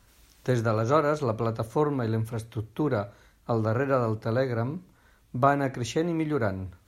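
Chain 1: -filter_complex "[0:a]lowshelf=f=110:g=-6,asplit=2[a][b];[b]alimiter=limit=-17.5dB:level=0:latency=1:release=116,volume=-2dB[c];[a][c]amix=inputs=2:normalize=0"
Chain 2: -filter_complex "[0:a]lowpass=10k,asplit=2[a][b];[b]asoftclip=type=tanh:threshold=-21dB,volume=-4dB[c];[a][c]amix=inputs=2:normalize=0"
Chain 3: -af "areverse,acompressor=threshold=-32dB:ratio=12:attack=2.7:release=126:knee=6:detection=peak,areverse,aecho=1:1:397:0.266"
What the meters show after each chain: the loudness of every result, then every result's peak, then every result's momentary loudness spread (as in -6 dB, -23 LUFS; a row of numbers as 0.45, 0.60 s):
-24.0, -24.0, -38.5 LUFS; -5.5, -6.5, -24.5 dBFS; 11, 10, 7 LU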